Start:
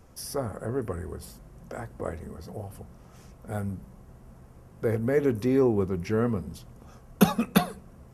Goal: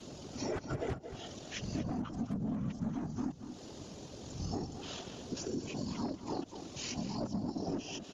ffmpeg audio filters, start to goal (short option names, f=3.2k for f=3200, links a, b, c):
-filter_complex "[0:a]areverse,acrossover=split=250[a][b];[a]acrusher=bits=3:mix=0:aa=0.000001[c];[c][b]amix=inputs=2:normalize=0,acrossover=split=3000[d][e];[e]acompressor=threshold=-55dB:ratio=4:attack=1:release=60[f];[d][f]amix=inputs=2:normalize=0,aeval=exprs='(tanh(17.8*val(0)+0.15)-tanh(0.15))/17.8':c=same,afftfilt=real='hypot(re,im)*cos(2*PI*random(0))':imag='hypot(re,im)*sin(2*PI*random(1))':win_size=512:overlap=0.75,acompressor=threshold=-51dB:ratio=8,bass=f=250:g=1,treble=f=4k:g=7,asplit=2[g][h];[h]adelay=227.4,volume=-9dB,highshelf=f=4k:g=-5.12[i];[g][i]amix=inputs=2:normalize=0,asetrate=24046,aresample=44100,atempo=1.83401,volume=17dB"